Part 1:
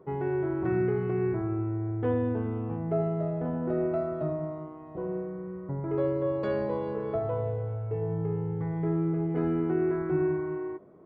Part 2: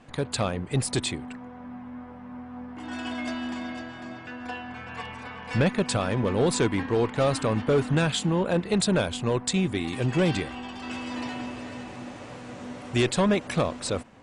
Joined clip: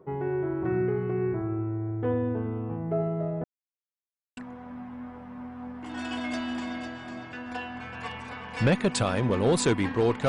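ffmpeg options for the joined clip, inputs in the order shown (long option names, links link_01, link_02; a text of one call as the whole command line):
ffmpeg -i cue0.wav -i cue1.wav -filter_complex "[0:a]apad=whole_dur=10.28,atrim=end=10.28,asplit=2[link_01][link_02];[link_01]atrim=end=3.44,asetpts=PTS-STARTPTS,afade=type=out:start_time=3.436:duration=0.004:curve=hsin[link_03];[link_02]atrim=start=3.44:end=4.37,asetpts=PTS-STARTPTS,volume=0[link_04];[1:a]atrim=start=1.31:end=7.22,asetpts=PTS-STARTPTS,afade=type=in:duration=0.004:curve=hsin[link_05];[link_03][link_04][link_05]concat=n=3:v=0:a=1" out.wav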